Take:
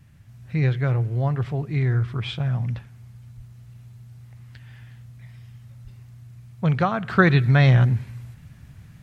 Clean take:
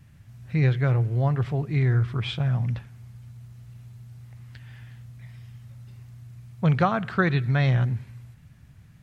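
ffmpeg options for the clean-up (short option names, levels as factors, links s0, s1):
-filter_complex "[0:a]asplit=3[s0][s1][s2];[s0]afade=t=out:st=3.36:d=0.02[s3];[s1]highpass=f=140:w=0.5412,highpass=f=140:w=1.3066,afade=t=in:st=3.36:d=0.02,afade=t=out:st=3.48:d=0.02[s4];[s2]afade=t=in:st=3.48:d=0.02[s5];[s3][s4][s5]amix=inputs=3:normalize=0,asplit=3[s6][s7][s8];[s6]afade=t=out:st=5.83:d=0.02[s9];[s7]highpass=f=140:w=0.5412,highpass=f=140:w=1.3066,afade=t=in:st=5.83:d=0.02,afade=t=out:st=5.95:d=0.02[s10];[s8]afade=t=in:st=5.95:d=0.02[s11];[s9][s10][s11]amix=inputs=3:normalize=0,asetnsamples=n=441:p=0,asendcmd='7.09 volume volume -6dB',volume=1"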